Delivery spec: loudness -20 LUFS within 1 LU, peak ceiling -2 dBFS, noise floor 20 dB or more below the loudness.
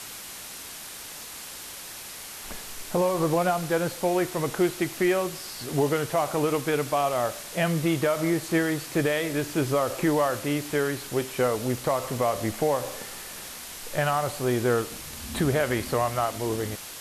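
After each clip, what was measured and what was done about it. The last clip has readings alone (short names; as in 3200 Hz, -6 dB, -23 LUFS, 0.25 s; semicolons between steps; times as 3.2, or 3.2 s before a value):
noise floor -40 dBFS; noise floor target -47 dBFS; loudness -26.5 LUFS; peak -13.5 dBFS; loudness target -20.0 LUFS
-> denoiser 7 dB, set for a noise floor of -40 dBFS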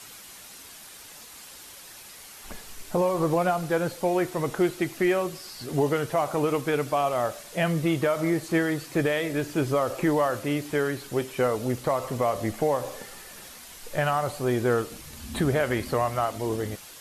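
noise floor -46 dBFS; noise floor target -47 dBFS
-> denoiser 6 dB, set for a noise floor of -46 dBFS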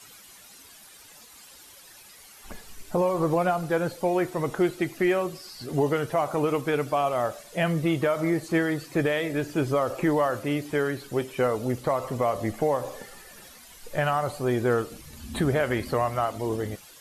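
noise floor -50 dBFS; loudness -26.5 LUFS; peak -14.0 dBFS; loudness target -20.0 LUFS
-> gain +6.5 dB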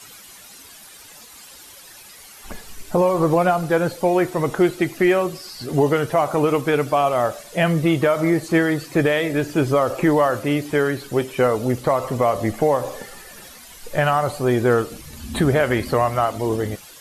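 loudness -20.0 LUFS; peak -7.5 dBFS; noise floor -43 dBFS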